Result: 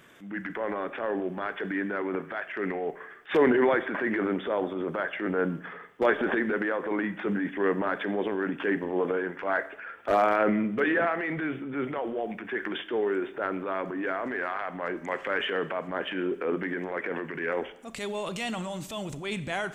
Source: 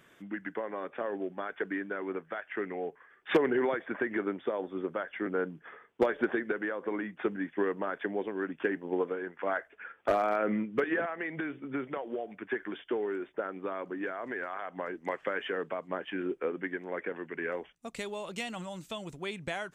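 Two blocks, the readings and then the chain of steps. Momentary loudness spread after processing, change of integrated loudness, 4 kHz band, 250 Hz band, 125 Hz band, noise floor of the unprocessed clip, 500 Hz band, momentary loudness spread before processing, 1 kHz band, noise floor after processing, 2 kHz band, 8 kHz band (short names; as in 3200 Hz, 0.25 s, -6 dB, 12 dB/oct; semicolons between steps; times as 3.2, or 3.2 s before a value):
9 LU, +5.0 dB, +6.5 dB, +5.0 dB, +7.5 dB, -62 dBFS, +4.0 dB, 9 LU, +5.5 dB, -46 dBFS, +5.5 dB, n/a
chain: transient shaper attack -8 dB, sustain +7 dB; Schroeder reverb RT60 0.8 s, combs from 28 ms, DRR 13.5 dB; gain +5.5 dB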